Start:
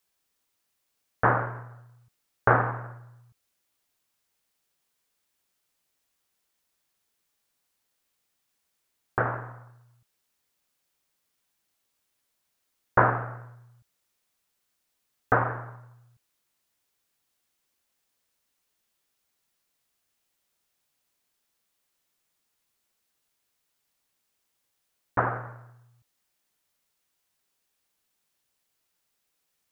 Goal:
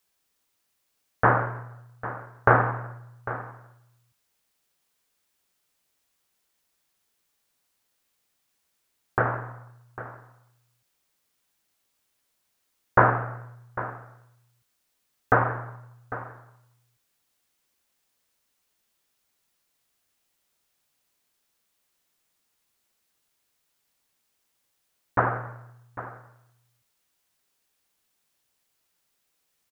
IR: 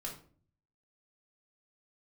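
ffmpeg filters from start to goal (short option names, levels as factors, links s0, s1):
-af "aecho=1:1:800:0.188,volume=1.33"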